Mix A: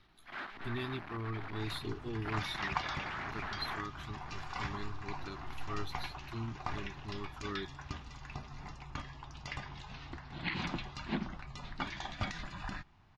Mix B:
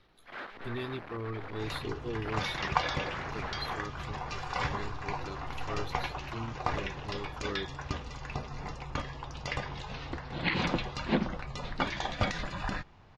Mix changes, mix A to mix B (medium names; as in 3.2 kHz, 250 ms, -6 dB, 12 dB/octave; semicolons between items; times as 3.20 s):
second sound +6.5 dB; master: add peaking EQ 500 Hz +13.5 dB 0.45 oct